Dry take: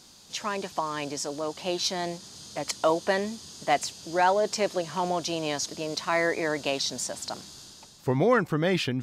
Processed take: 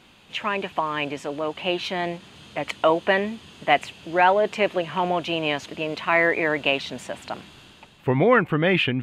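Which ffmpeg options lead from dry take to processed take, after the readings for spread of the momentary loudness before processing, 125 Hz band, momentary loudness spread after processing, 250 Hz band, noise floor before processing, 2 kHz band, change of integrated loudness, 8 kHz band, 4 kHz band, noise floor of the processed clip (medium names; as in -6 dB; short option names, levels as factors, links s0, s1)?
12 LU, +4.0 dB, 14 LU, +4.0 dB, -52 dBFS, +8.0 dB, +5.0 dB, -13.0 dB, +2.5 dB, -52 dBFS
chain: -af "highshelf=f=3800:t=q:w=3:g=-12,volume=1.58"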